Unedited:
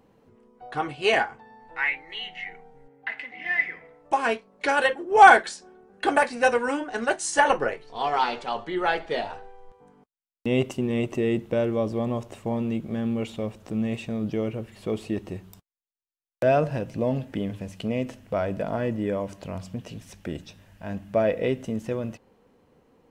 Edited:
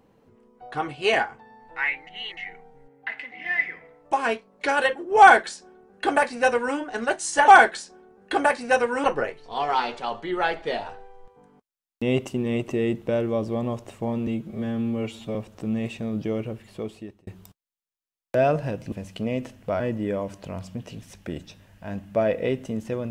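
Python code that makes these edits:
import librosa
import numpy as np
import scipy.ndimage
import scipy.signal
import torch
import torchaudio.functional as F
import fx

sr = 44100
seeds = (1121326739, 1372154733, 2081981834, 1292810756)

y = fx.edit(x, sr, fx.reverse_span(start_s=2.07, length_s=0.3),
    fx.duplicate(start_s=5.2, length_s=1.56, to_s=7.48),
    fx.stretch_span(start_s=12.71, length_s=0.72, factor=1.5),
    fx.fade_out_span(start_s=14.63, length_s=0.72),
    fx.cut(start_s=17.0, length_s=0.56),
    fx.cut(start_s=18.44, length_s=0.35), tone=tone)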